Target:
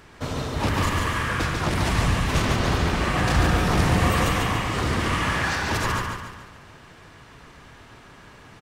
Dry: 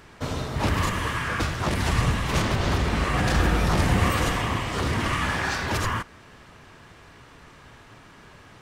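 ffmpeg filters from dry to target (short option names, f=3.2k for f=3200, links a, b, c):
-af "aecho=1:1:143|286|429|572|715|858:0.631|0.29|0.134|0.0614|0.0283|0.013"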